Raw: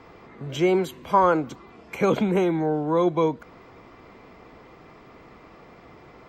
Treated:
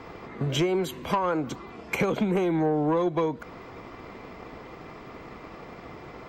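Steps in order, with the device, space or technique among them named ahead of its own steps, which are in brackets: drum-bus smash (transient shaper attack +5 dB, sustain 0 dB; compressor 16:1, threshold -24 dBFS, peak gain reduction 15.5 dB; soft clip -21.5 dBFS, distortion -17 dB); gain +5 dB

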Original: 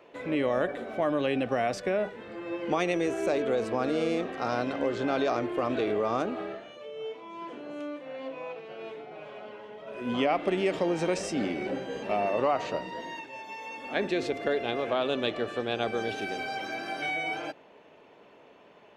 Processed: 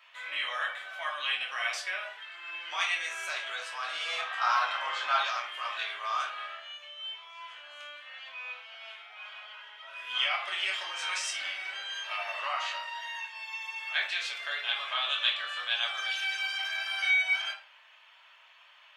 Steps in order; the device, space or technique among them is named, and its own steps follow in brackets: 4.07–5.19 bell 900 Hz +9.5 dB 1.5 oct; headphones lying on a table (HPF 1200 Hz 24 dB/oct; bell 3200 Hz +7 dB 0.29 oct); shoebox room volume 340 m³, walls furnished, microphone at 2.8 m

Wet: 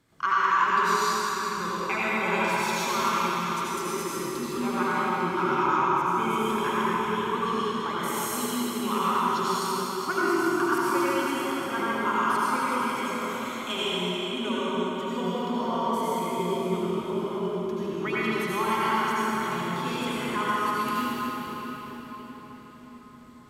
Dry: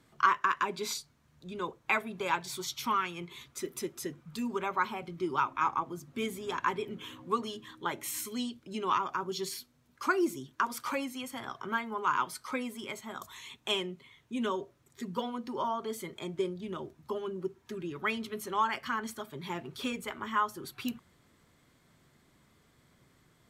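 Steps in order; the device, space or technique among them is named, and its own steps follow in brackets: cathedral (reverb RT60 5.5 s, pre-delay 72 ms, DRR -10 dB); gain -3 dB

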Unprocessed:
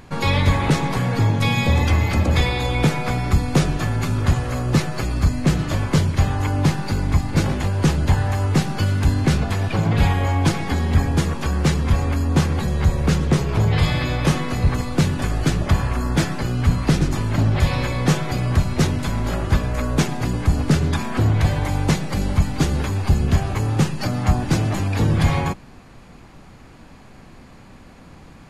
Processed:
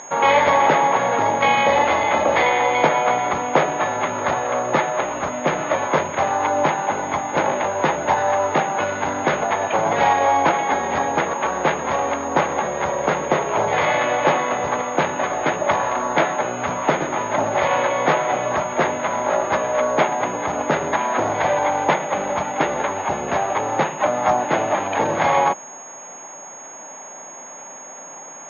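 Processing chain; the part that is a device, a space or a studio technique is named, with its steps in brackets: toy sound module (decimation joined by straight lines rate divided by 8×; pulse-width modulation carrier 6600 Hz; speaker cabinet 510–4300 Hz, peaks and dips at 600 Hz +8 dB, 890 Hz +7 dB, 2100 Hz +3 dB, 3700 Hz +7 dB); gain +7 dB

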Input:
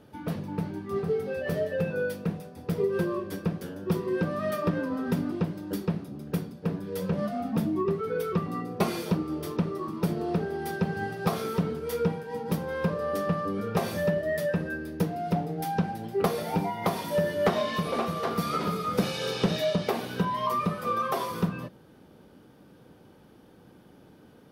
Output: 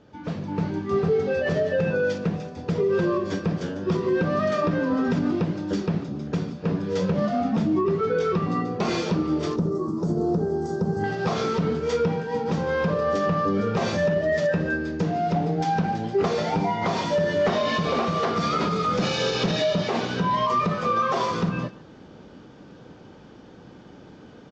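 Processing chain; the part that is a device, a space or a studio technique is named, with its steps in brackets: 9.56–11.04 EQ curve 380 Hz 0 dB, 1300 Hz -9 dB, 2500 Hz -26 dB, 11000 Hz +13 dB; echo 0.145 s -21 dB; low-bitrate web radio (AGC gain up to 8 dB; limiter -15 dBFS, peak gain reduction 9.5 dB; AAC 32 kbps 16000 Hz)

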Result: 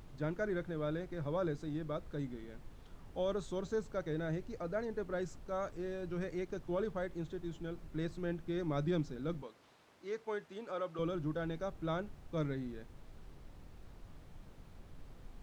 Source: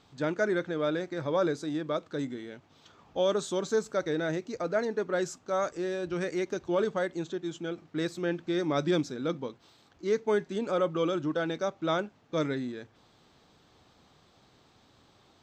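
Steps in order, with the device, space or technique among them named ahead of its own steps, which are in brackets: car interior (bell 150 Hz +9 dB 0.56 oct; high shelf 3100 Hz -8 dB; brown noise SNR 11 dB); 9.42–10.99 weighting filter A; gain -9 dB

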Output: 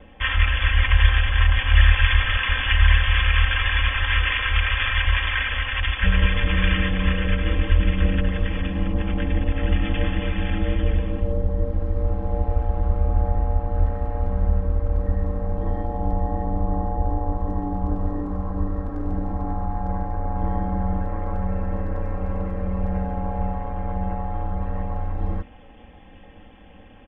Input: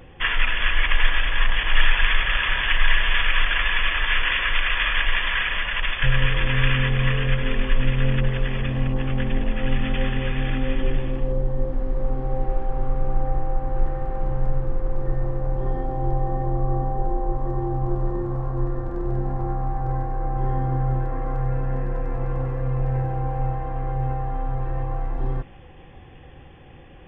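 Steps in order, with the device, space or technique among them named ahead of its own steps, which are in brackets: ring-modulated robot voice (ring modulator 58 Hz; comb 3.8 ms, depth 78%)

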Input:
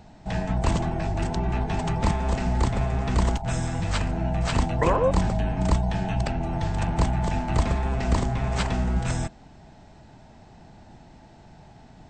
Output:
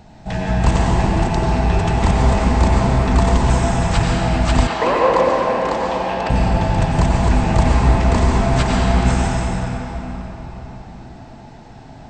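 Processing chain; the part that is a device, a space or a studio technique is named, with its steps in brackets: cathedral (reverb RT60 4.5 s, pre-delay 86 ms, DRR -4 dB); 4.67–6.3 three-band isolator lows -22 dB, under 260 Hz, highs -15 dB, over 5900 Hz; gain +4.5 dB

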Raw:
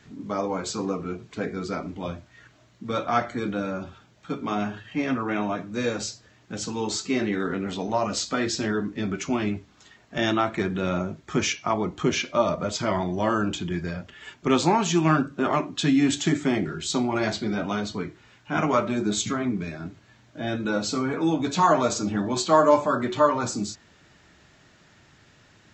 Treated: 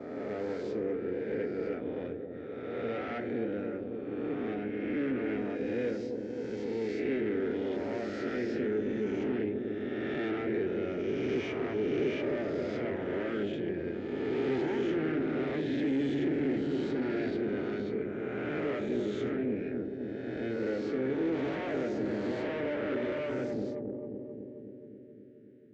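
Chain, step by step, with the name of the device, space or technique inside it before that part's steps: spectral swells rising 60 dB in 1.92 s; 4.56–5.22 steep low-pass 6000 Hz; gate -39 dBFS, range -12 dB; analogue delay pedal into a guitar amplifier (analogue delay 0.264 s, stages 1024, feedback 73%, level -6.5 dB; tube stage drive 23 dB, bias 0.75; speaker cabinet 82–3700 Hz, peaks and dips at 130 Hz +6 dB, 180 Hz -8 dB, 410 Hz +5 dB, 630 Hz -5 dB, 1100 Hz -9 dB, 2600 Hz -3 dB); graphic EQ 125/250/500/1000/2000/4000 Hz -5/+4/+5/-10/+4/-10 dB; gain -6.5 dB

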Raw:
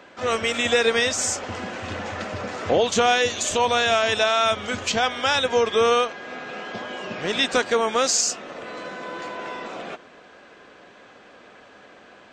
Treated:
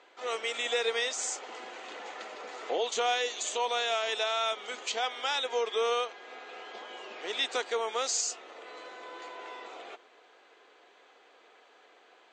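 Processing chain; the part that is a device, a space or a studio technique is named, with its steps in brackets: phone speaker on a table (speaker cabinet 400–8000 Hz, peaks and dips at 580 Hz -9 dB, 1100 Hz -4 dB, 1600 Hz -7 dB, 2600 Hz -3 dB, 5400 Hz -6 dB); gain -6.5 dB

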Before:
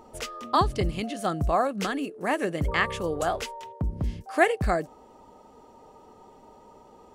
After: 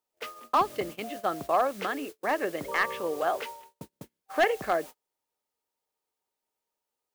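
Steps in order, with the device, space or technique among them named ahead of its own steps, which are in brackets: aircraft radio (BPF 370–2700 Hz; hard clip -16 dBFS, distortion -15 dB; white noise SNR 18 dB; gate -38 dBFS, range -39 dB)

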